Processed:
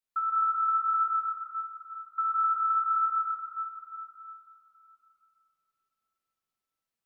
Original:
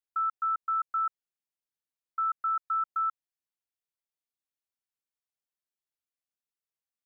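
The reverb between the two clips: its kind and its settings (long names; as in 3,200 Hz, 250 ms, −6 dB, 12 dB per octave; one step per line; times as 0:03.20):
rectangular room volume 210 cubic metres, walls hard, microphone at 1.1 metres
level −2 dB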